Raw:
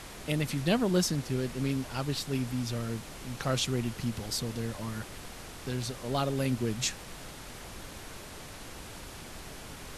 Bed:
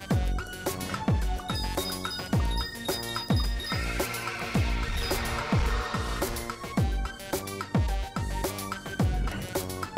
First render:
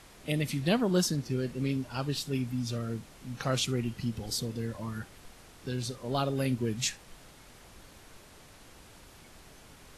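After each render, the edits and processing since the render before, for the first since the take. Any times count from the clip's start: noise print and reduce 9 dB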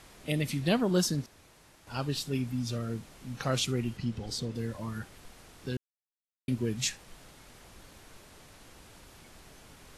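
1.26–1.87 room tone; 3.97–4.55 air absorption 54 m; 5.77–6.48 mute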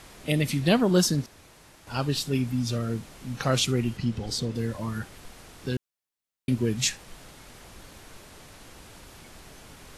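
gain +5.5 dB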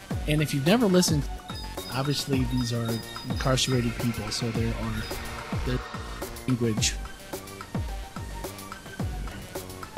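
add bed -5.5 dB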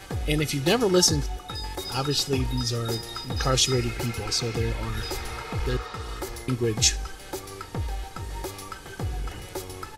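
dynamic EQ 5800 Hz, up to +6 dB, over -44 dBFS, Q 1.5; comb 2.4 ms, depth 55%

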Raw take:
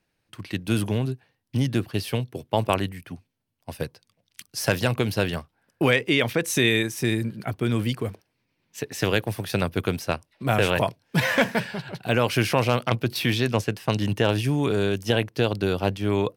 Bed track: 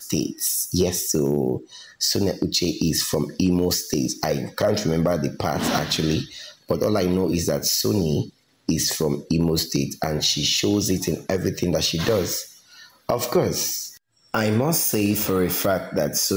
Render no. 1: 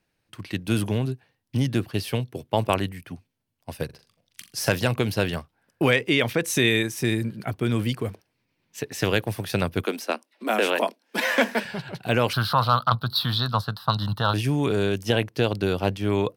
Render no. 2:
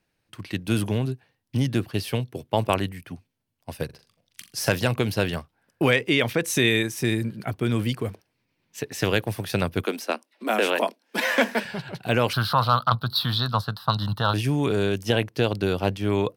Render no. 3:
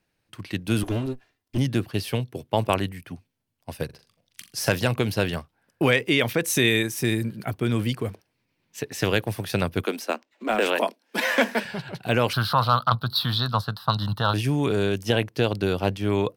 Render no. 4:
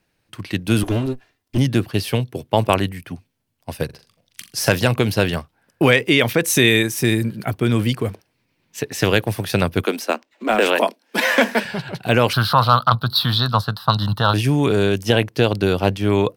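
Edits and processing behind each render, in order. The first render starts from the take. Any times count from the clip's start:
3.85–4.69 flutter echo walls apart 7.2 m, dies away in 0.29 s; 9.84–11.65 steep high-pass 210 Hz 72 dB/oct; 12.33–14.34 EQ curve 150 Hz 0 dB, 240 Hz -7 dB, 360 Hz -16 dB, 1300 Hz +12 dB, 2300 Hz -23 dB, 4000 Hz +12 dB, 6400 Hz -16 dB, 15000 Hz +2 dB
nothing audible
0.83–1.58 minimum comb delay 2.9 ms; 5.95–7.58 high shelf 12000 Hz +8.5 dB; 10.09–10.66 decimation joined by straight lines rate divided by 4×
gain +6 dB; limiter -2 dBFS, peak gain reduction 2 dB

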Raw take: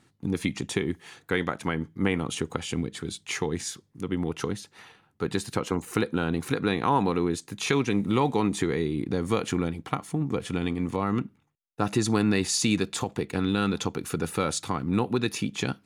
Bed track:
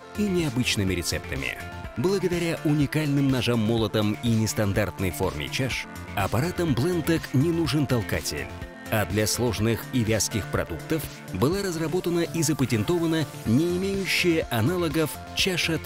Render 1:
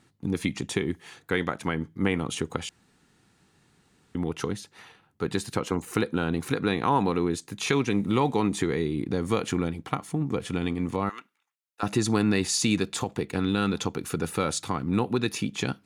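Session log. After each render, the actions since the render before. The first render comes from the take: 2.69–4.15 room tone; 11.09–11.83 HPF 1200 Hz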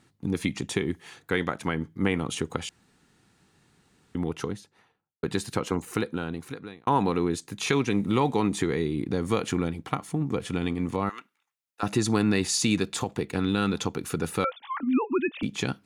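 4.2–5.23 studio fade out; 5.75–6.87 fade out; 14.44–15.43 sine-wave speech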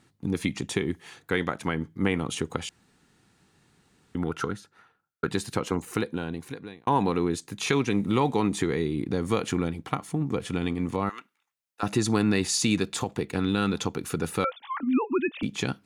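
4.22–5.29 bell 1400 Hz +15 dB 0.32 oct; 6.04–7.07 notch 1300 Hz, Q 6.4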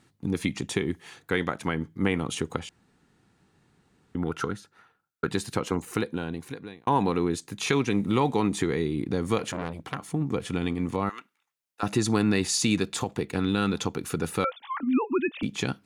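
2.59–4.26 high shelf 2200 Hz -7.5 dB; 9.38–10.14 core saturation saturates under 1900 Hz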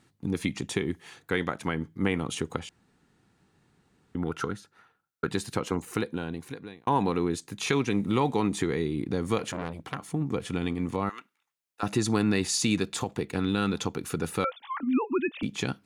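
gain -1.5 dB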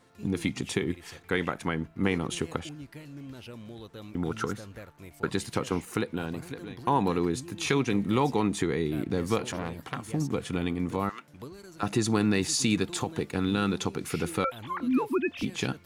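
add bed track -20.5 dB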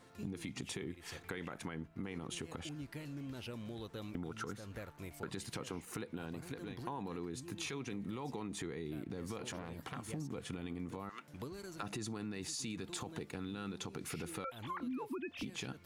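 limiter -21.5 dBFS, peak gain reduction 11 dB; compressor 4:1, threshold -41 dBFS, peak gain reduction 13.5 dB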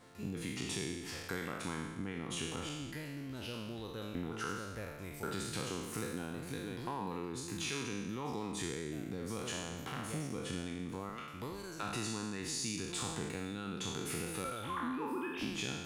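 spectral trails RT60 1.22 s

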